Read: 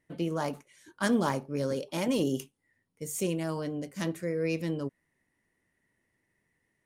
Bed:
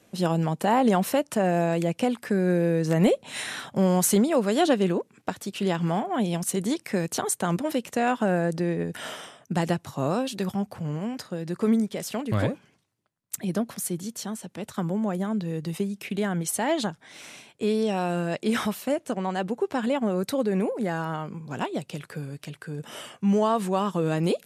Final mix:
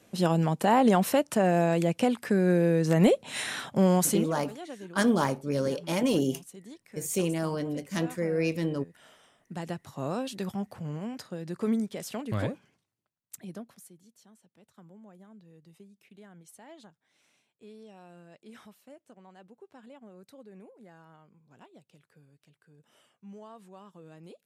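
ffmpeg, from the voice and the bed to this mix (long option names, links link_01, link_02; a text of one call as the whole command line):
ffmpeg -i stem1.wav -i stem2.wav -filter_complex "[0:a]adelay=3950,volume=2.5dB[link_01];[1:a]volume=14.5dB,afade=type=out:start_time=3.93:duration=0.41:silence=0.1,afade=type=in:start_time=9.19:duration=1.06:silence=0.177828,afade=type=out:start_time=12.57:duration=1.37:silence=0.105925[link_02];[link_01][link_02]amix=inputs=2:normalize=0" out.wav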